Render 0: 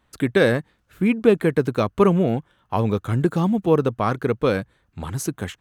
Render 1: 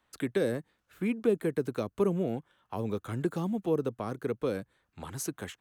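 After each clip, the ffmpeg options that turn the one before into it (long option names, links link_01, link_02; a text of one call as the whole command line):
ffmpeg -i in.wav -filter_complex "[0:a]acrossover=split=320|480|6200[link_01][link_02][link_03][link_04];[link_03]acompressor=threshold=-35dB:ratio=4[link_05];[link_01][link_02][link_05][link_04]amix=inputs=4:normalize=0,lowshelf=frequency=230:gain=-11,volume=-5.5dB" out.wav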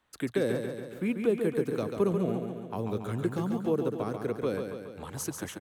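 ffmpeg -i in.wav -af "aecho=1:1:140|280|420|560|700|840|980|1120:0.501|0.296|0.174|0.103|0.0607|0.0358|0.0211|0.0125" out.wav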